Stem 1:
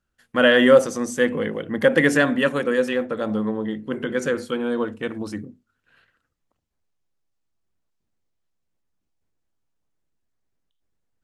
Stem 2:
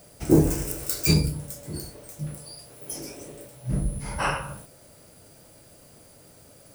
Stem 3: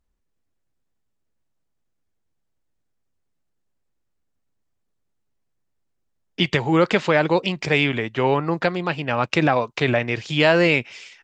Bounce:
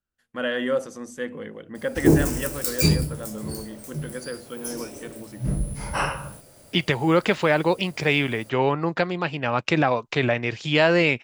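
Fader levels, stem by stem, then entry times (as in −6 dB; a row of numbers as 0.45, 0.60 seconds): −11.0, +1.0, −2.0 decibels; 0.00, 1.75, 0.35 seconds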